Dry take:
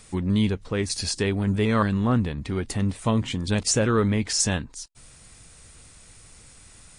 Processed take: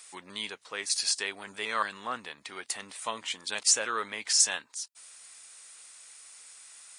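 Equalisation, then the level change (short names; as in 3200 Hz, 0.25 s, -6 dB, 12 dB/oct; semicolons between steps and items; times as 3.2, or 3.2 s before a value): HPF 920 Hz 12 dB/oct; high shelf 4800 Hz +4.5 dB; -2.0 dB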